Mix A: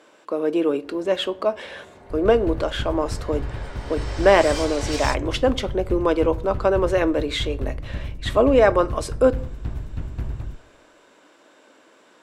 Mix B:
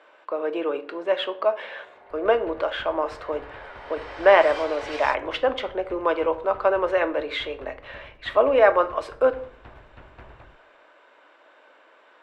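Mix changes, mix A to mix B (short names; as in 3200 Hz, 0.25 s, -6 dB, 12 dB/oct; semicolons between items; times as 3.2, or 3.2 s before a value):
speech: send +8.0 dB; master: add three-band isolator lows -21 dB, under 470 Hz, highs -23 dB, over 3300 Hz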